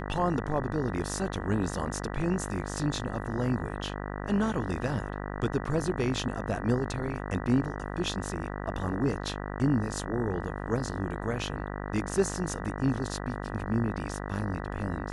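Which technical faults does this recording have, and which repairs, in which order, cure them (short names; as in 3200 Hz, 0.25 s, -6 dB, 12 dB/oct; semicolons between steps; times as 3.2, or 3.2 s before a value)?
buzz 50 Hz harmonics 39 -36 dBFS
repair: de-hum 50 Hz, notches 39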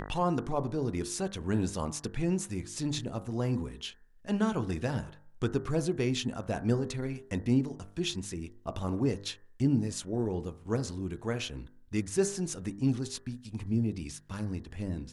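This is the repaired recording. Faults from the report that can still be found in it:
none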